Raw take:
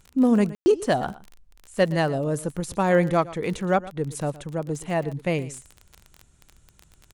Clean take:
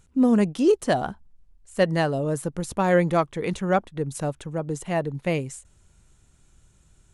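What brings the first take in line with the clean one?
click removal
ambience match 0:00.55–0:00.66
echo removal 118 ms −18 dB

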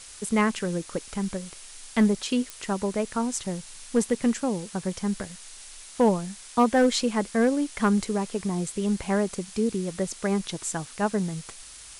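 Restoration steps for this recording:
clipped peaks rebuilt −13.5 dBFS
click removal
noise reduction from a noise print 25 dB

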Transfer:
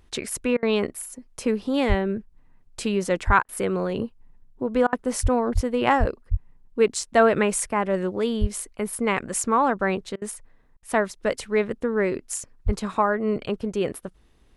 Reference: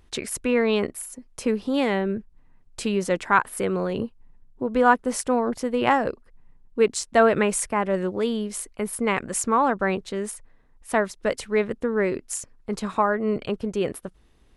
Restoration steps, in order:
high-pass at the plosives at 0:01.88/0:03.26/0:05.22/0:05.54/0:05.99/0:06.30/0:08.40/0:12.65
repair the gap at 0:00.57/0:03.43/0:04.87/0:10.16/0:10.77, 56 ms

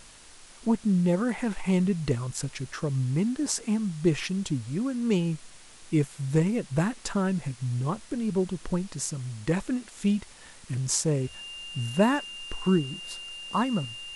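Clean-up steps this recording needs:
notch filter 2,800 Hz, Q 30
broadband denoise 24 dB, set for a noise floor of −48 dBFS

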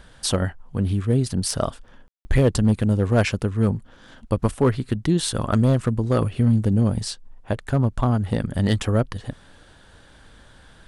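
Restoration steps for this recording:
clipped peaks rebuilt −10 dBFS
ambience match 0:02.08–0:02.25

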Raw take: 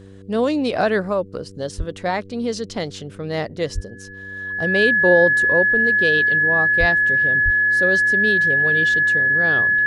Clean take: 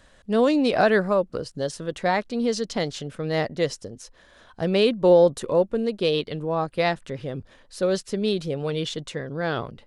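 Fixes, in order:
hum removal 97.1 Hz, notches 5
notch filter 1,700 Hz, Q 30
high-pass at the plosives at 0:01.77/0:03.74/0:06.79/0:07.44

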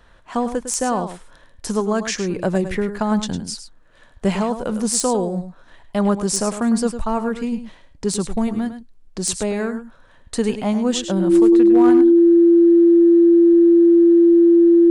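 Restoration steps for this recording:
clipped peaks rebuilt −6.5 dBFS
notch filter 340 Hz, Q 30
echo removal 104 ms −10.5 dB

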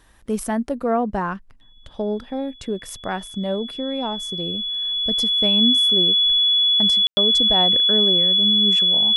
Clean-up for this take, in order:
notch filter 3,400 Hz, Q 30
ambience match 0:07.07–0:07.17

